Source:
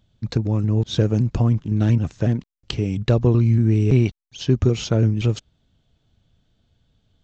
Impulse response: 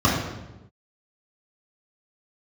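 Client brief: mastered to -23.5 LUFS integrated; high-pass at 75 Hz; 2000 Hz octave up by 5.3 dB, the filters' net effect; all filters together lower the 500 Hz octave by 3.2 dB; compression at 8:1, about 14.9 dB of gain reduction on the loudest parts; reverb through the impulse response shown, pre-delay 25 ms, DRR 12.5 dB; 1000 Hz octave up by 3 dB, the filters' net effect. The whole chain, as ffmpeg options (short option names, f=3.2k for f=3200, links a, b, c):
-filter_complex "[0:a]highpass=75,equalizer=f=500:t=o:g=-5.5,equalizer=f=1k:t=o:g=4.5,equalizer=f=2k:t=o:g=6,acompressor=threshold=-29dB:ratio=8,asplit=2[a][b];[1:a]atrim=start_sample=2205,adelay=25[c];[b][c]afir=irnorm=-1:irlink=0,volume=-32.5dB[d];[a][d]amix=inputs=2:normalize=0,volume=8dB"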